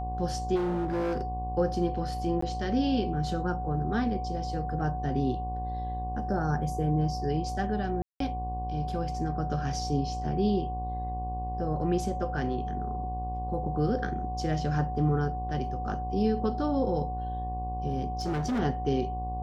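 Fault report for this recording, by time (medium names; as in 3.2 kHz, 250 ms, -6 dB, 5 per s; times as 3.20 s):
buzz 60 Hz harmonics 19 -35 dBFS
whine 740 Hz -34 dBFS
0.55–1.22 s: clipped -26 dBFS
2.41–2.42 s: dropout 14 ms
8.02–8.20 s: dropout 183 ms
18.20–18.60 s: clipped -26 dBFS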